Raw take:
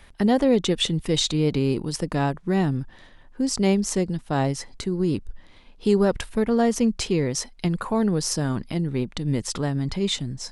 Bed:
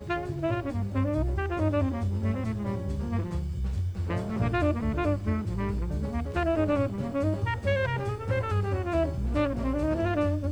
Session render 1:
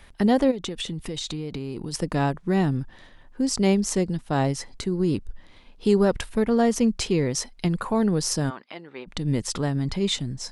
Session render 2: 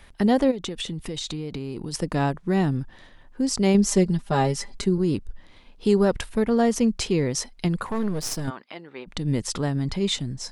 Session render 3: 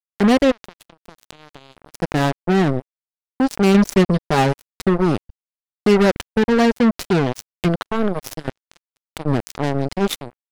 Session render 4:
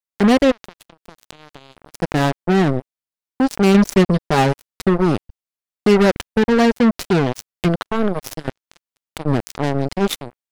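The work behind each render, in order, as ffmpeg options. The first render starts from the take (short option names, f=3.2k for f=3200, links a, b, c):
-filter_complex "[0:a]asplit=3[a][b][c];[a]afade=t=out:st=0.5:d=0.02[d];[b]acompressor=threshold=-27dB:ratio=10:attack=3.2:release=140:knee=1:detection=peak,afade=t=in:st=0.5:d=0.02,afade=t=out:st=1.93:d=0.02[e];[c]afade=t=in:st=1.93:d=0.02[f];[d][e][f]amix=inputs=3:normalize=0,asplit=3[g][h][i];[g]afade=t=out:st=8.49:d=0.02[j];[h]highpass=690,lowpass=3.1k,afade=t=in:st=8.49:d=0.02,afade=t=out:st=9.06:d=0.02[k];[i]afade=t=in:st=9.06:d=0.02[l];[j][k][l]amix=inputs=3:normalize=0"
-filter_complex "[0:a]asettb=1/sr,asplit=3[a][b][c];[a]atrim=end=3.744[d];[b]atrim=start=3.74:end=4.98,asetpts=PTS-STARTPTS,afade=t=in:d=0.004:c=qsin,afade=t=out:st=1.236:d=0.004:c=qsin,aecho=1:1:5:0.84,atrim=end_sample=54684[e];[c]atrim=start=4.976[f];[d][e]acrossfade=d=0.004:c1=hsin:c2=qsin[g];[g][f]acrossfade=d=0.004:c1=qsin:c2=hsin,asettb=1/sr,asplit=3[h][i][j];[h]atrim=end=7.864[k];[i]atrim=start=7.86:end=8.48,asetpts=PTS-STARTPTS,afade=t=in:d=0.004:c=qsin,afade=t=out:st=0.616:d=0.004:c=qsin,aeval=exprs='if(lt(val(0),0),0.251*val(0),val(0))':c=same[l];[j]atrim=start=8.476[m];[k][l]acrossfade=d=0.004:c1=hsin:c2=qsin[n];[n][m]acrossfade=d=0.004:c1=qsin:c2=hsin"
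-filter_complex "[0:a]asplit=2[a][b];[b]adynamicsmooth=sensitivity=1:basefreq=5.1k,volume=-2.5dB[c];[a][c]amix=inputs=2:normalize=0,acrusher=bits=2:mix=0:aa=0.5"
-af "volume=1dB"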